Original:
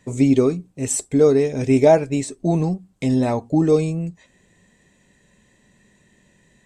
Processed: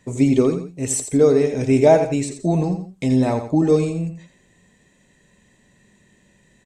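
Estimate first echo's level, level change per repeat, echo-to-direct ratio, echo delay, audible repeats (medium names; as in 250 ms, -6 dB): -9.0 dB, -9.0 dB, -8.5 dB, 85 ms, 2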